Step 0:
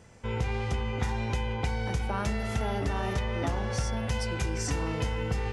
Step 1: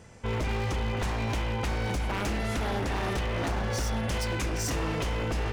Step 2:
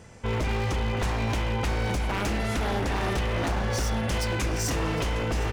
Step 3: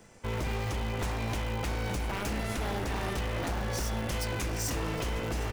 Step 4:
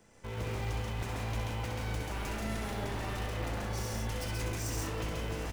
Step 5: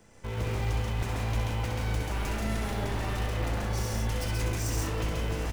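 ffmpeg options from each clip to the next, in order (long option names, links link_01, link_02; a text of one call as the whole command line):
ffmpeg -i in.wav -af "aeval=exprs='0.0447*(abs(mod(val(0)/0.0447+3,4)-2)-1)':channel_layout=same,volume=3dB" out.wav
ffmpeg -i in.wav -af "aecho=1:1:760:0.15,volume=2.5dB" out.wav
ffmpeg -i in.wav -filter_complex "[0:a]highshelf=frequency=11000:gain=11,acrossover=split=180|4600[link_01][link_02][link_03];[link_01]acrusher=bits=6:dc=4:mix=0:aa=0.000001[link_04];[link_04][link_02][link_03]amix=inputs=3:normalize=0,volume=-6dB" out.wav
ffmpeg -i in.wav -af "aecho=1:1:64.14|134.1|172:0.562|0.794|0.562,volume=-7.5dB" out.wav
ffmpeg -i in.wav -af "lowshelf=frequency=98:gain=5,volume=3.5dB" out.wav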